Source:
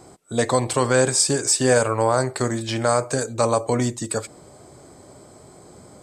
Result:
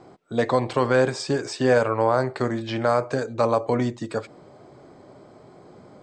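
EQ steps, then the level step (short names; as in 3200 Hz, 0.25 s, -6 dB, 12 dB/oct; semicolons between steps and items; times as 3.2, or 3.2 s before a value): air absorption 210 m; bell 61 Hz -15 dB 0.96 oct; 0.0 dB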